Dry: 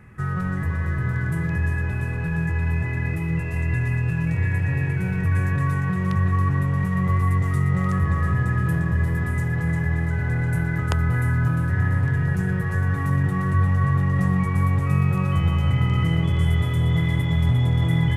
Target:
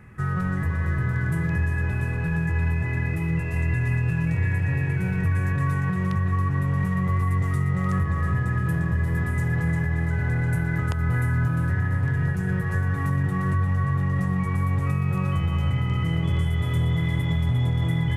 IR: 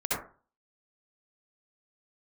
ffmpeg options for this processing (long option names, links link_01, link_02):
-af "alimiter=limit=-15dB:level=0:latency=1:release=189"